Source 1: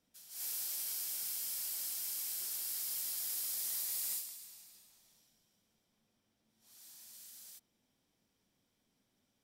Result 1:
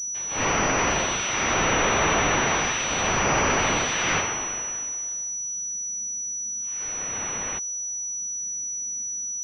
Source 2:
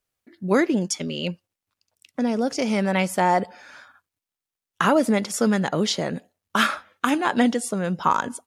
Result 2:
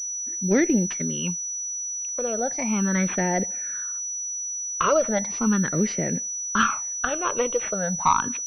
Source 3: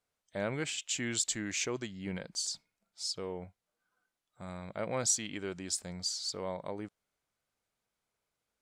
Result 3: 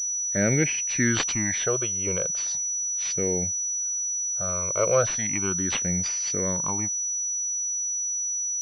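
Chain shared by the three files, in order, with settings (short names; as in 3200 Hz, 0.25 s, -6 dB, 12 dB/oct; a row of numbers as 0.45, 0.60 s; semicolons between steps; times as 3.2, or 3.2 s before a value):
one diode to ground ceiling -7.5 dBFS; phaser stages 8, 0.37 Hz, lowest notch 230–1100 Hz; pulse-width modulation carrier 5900 Hz; match loudness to -24 LUFS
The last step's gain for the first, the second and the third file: +22.5, +2.0, +14.5 dB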